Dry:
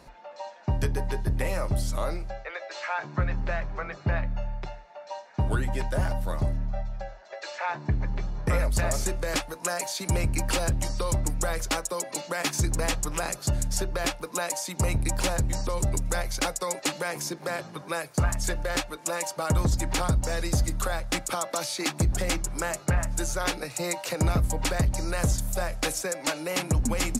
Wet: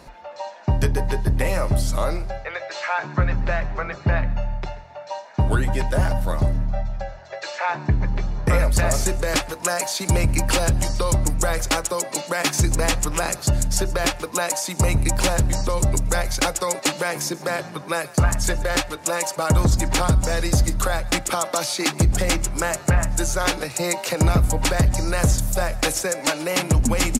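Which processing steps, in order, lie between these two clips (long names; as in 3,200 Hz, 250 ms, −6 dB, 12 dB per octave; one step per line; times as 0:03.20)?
echo with shifted repeats 134 ms, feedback 34%, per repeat +43 Hz, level −20 dB
level +6.5 dB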